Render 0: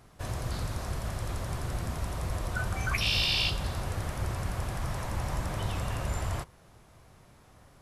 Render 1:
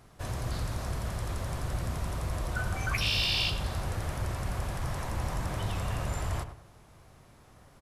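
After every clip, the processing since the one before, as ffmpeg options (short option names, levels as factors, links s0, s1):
-filter_complex "[0:a]asplit=2[s0][s1];[s1]asoftclip=type=hard:threshold=0.0237,volume=0.266[s2];[s0][s2]amix=inputs=2:normalize=0,asplit=2[s3][s4];[s4]adelay=98,lowpass=f=1900:p=1,volume=0.335,asplit=2[s5][s6];[s6]adelay=98,lowpass=f=1900:p=1,volume=0.35,asplit=2[s7][s8];[s8]adelay=98,lowpass=f=1900:p=1,volume=0.35,asplit=2[s9][s10];[s10]adelay=98,lowpass=f=1900:p=1,volume=0.35[s11];[s3][s5][s7][s9][s11]amix=inputs=5:normalize=0,volume=0.794"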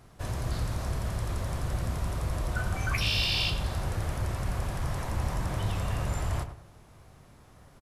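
-filter_complex "[0:a]lowshelf=f=330:g=2.5,asplit=2[s0][s1];[s1]adelay=29,volume=0.211[s2];[s0][s2]amix=inputs=2:normalize=0"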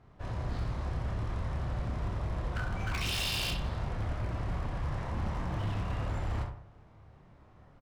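-af "aecho=1:1:28|67:0.668|0.562,adynamicsmooth=sensitivity=4.5:basefreq=2900,aeval=exprs='0.0794*(abs(mod(val(0)/0.0794+3,4)-2)-1)':c=same,volume=0.562"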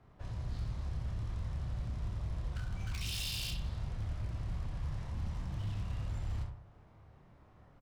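-filter_complex "[0:a]acrossover=split=180|3000[s0][s1][s2];[s1]acompressor=threshold=0.00178:ratio=2.5[s3];[s0][s3][s2]amix=inputs=3:normalize=0,volume=0.708"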